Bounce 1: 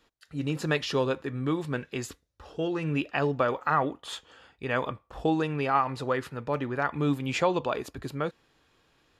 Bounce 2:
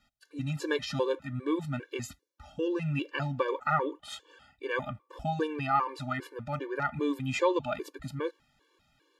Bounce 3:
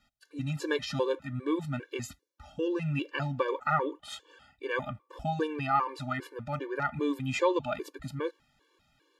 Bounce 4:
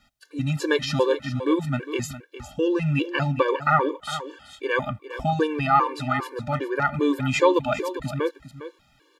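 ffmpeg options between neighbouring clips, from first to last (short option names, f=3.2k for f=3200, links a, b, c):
-af "bandreject=f=710:w=12,afftfilt=real='re*gt(sin(2*PI*2.5*pts/sr)*(1-2*mod(floor(b*sr/1024/300),2)),0)':imag='im*gt(sin(2*PI*2.5*pts/sr)*(1-2*mod(floor(b*sr/1024/300),2)),0)':win_size=1024:overlap=0.75"
-af anull
-af "aecho=1:1:406:0.237,volume=8dB"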